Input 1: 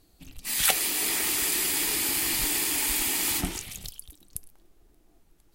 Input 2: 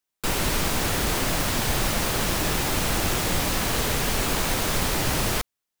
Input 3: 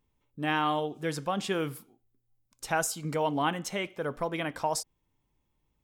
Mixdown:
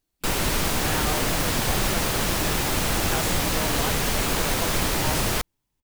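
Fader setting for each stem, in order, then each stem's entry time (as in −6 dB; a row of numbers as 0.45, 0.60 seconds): −19.5, +0.5, −4.5 decibels; 0.00, 0.00, 0.40 seconds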